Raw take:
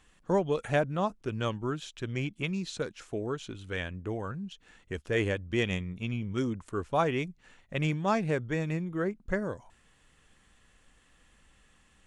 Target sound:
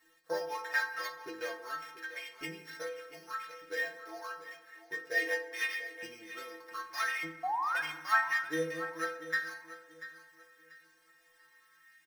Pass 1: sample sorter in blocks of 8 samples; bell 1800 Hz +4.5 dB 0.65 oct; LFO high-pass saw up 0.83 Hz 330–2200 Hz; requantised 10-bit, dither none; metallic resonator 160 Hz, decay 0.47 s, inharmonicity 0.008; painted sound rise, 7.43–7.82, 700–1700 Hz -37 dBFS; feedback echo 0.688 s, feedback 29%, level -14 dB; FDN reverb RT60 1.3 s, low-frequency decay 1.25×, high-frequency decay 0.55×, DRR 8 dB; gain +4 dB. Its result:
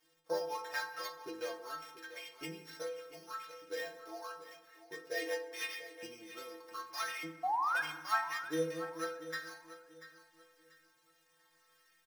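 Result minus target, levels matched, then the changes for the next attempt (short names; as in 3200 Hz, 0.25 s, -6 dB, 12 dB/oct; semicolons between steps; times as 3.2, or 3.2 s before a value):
2000 Hz band -3.5 dB
change: bell 1800 Hz +15.5 dB 0.65 oct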